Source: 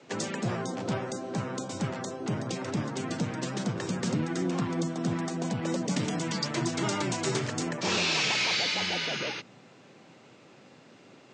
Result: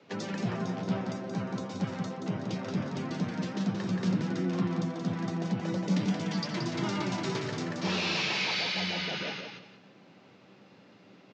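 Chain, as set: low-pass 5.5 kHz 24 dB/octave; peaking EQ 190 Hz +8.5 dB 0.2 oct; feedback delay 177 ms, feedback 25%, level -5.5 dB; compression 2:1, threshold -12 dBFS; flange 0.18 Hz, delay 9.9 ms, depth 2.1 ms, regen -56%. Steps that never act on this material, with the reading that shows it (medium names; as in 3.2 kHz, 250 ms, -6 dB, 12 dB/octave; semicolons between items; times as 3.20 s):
compression, threshold -12 dBFS: peak at its input -14.0 dBFS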